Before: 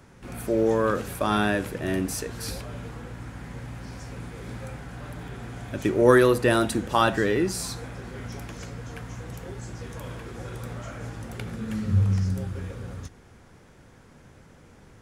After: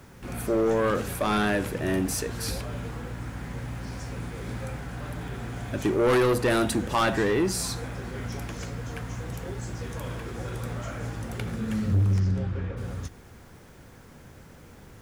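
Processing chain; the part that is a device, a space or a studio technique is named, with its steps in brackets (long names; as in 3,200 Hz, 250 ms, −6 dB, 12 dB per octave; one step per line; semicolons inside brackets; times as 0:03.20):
open-reel tape (soft clipping −20.5 dBFS, distortion −8 dB; parametric band 67 Hz +2 dB; white noise bed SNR 36 dB)
0:12.19–0:12.76: low-pass filter 5,800 Hz → 2,500 Hz 12 dB per octave
level +2.5 dB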